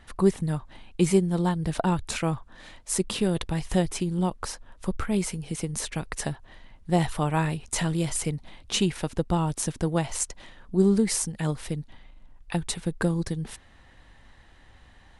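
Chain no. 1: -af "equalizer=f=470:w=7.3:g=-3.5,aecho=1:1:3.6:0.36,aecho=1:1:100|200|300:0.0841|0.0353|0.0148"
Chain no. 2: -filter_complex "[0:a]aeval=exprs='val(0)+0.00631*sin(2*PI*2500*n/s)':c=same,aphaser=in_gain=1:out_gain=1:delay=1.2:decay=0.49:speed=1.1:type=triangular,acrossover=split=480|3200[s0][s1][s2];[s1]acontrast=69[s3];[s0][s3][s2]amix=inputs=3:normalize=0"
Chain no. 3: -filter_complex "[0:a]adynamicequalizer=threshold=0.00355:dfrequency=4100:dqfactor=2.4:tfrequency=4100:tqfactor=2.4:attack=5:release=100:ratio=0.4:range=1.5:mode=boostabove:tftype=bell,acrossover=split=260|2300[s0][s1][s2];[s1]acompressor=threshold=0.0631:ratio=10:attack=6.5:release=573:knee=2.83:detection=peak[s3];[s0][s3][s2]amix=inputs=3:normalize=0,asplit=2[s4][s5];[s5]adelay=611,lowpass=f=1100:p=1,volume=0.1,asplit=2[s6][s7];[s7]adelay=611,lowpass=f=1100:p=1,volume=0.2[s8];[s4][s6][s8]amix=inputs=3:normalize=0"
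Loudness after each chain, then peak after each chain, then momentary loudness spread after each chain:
-28.0 LUFS, -23.5 LUFS, -28.5 LUFS; -9.0 dBFS, -2.0 dBFS, -11.0 dBFS; 12 LU, 17 LU, 11 LU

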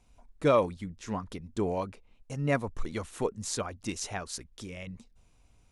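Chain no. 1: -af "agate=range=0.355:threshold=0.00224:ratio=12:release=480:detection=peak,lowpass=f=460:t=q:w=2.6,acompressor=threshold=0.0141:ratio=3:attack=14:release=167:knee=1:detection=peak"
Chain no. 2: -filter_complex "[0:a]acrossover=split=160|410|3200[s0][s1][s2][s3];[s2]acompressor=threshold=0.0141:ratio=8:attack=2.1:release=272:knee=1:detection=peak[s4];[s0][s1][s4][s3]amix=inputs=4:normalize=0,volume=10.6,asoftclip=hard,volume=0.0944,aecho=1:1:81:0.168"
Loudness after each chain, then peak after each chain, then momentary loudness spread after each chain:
-40.0 LUFS, -36.5 LUFS; -24.5 dBFS, -20.0 dBFS; 8 LU, 11 LU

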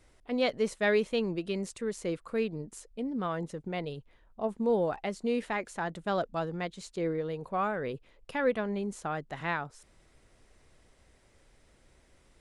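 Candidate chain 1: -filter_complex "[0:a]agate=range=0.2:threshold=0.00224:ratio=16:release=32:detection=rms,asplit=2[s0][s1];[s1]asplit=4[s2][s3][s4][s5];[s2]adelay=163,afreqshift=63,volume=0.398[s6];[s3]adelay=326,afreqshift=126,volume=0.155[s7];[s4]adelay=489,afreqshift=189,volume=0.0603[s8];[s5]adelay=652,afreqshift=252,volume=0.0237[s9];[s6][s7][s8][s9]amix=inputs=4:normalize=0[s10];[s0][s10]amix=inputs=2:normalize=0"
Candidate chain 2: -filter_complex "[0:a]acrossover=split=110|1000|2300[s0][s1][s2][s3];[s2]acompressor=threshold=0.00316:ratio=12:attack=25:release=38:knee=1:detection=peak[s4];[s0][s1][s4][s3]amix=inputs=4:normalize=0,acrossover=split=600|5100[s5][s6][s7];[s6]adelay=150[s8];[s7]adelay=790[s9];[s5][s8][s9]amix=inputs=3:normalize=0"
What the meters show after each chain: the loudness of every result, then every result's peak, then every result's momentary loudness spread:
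-32.0 LUFS, -35.0 LUFS; -15.5 dBFS, -17.5 dBFS; 10 LU, 9 LU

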